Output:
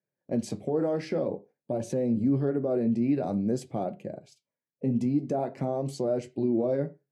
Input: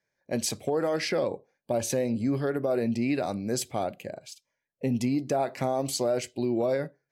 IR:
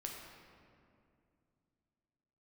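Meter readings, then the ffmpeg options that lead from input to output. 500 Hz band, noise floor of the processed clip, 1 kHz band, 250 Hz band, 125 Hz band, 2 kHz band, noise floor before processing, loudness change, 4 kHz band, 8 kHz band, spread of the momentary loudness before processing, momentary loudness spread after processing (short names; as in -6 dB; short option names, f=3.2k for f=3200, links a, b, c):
-1.0 dB, under -85 dBFS, -4.5 dB, +2.0 dB, +2.0 dB, -11.0 dB, -84 dBFS, 0.0 dB, under -10 dB, under -10 dB, 7 LU, 8 LU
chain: -filter_complex "[0:a]highpass=140,agate=range=-6dB:threshold=-53dB:ratio=16:detection=peak,lowpass=f=11k:w=0.5412,lowpass=f=11k:w=1.3066,tiltshelf=f=700:g=9.5,alimiter=limit=-16dB:level=0:latency=1:release=59,flanger=delay=5.3:depth=8.9:regen=-59:speed=0.51:shape=sinusoidal,asplit=2[a][b];[1:a]atrim=start_sample=2205,atrim=end_sample=4410,lowpass=2.8k[c];[b][c]afir=irnorm=-1:irlink=0,volume=-9dB[d];[a][d]amix=inputs=2:normalize=0"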